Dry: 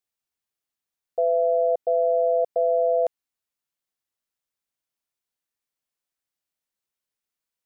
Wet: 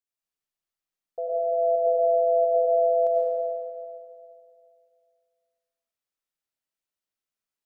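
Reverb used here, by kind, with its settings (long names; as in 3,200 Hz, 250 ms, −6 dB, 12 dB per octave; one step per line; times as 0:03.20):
comb and all-pass reverb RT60 2.4 s, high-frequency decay 0.75×, pre-delay 55 ms, DRR −5 dB
level −8.5 dB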